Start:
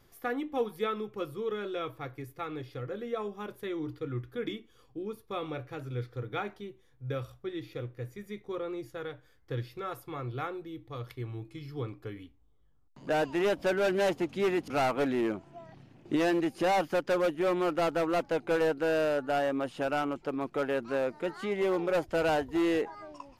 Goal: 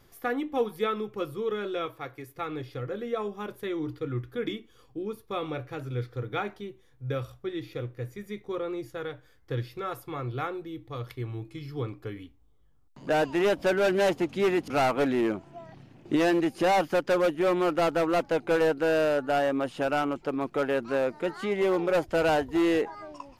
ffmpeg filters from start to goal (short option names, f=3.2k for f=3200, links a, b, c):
-filter_complex "[0:a]asettb=1/sr,asplit=3[a][b][c];[a]atrim=end=1.864[d];[b]atrim=start=1.86:end=2.36,asetpts=PTS-STARTPTS,afade=t=in:d=0.004:c=qsin,afade=t=out:st=0.496:d=0.004:c=qsin,lowshelf=f=220:g=-10.5[e];[c]atrim=start=2.356[f];[d][e]acrossfade=d=0.004:c1=hsin:c2=qsin[g];[g][f]acrossfade=d=0.004:c1=qsin:c2=hsin,volume=3.5dB"